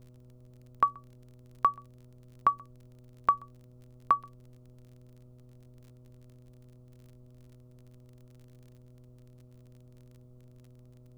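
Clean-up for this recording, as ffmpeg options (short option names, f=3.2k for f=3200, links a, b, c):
-af "adeclick=t=4,bandreject=f=124.1:t=h:w=4,bandreject=f=248.2:t=h:w=4,bandreject=f=372.3:t=h:w=4,bandreject=f=496.4:t=h:w=4,bandreject=f=620.5:t=h:w=4,afftdn=nr=30:nf=-55"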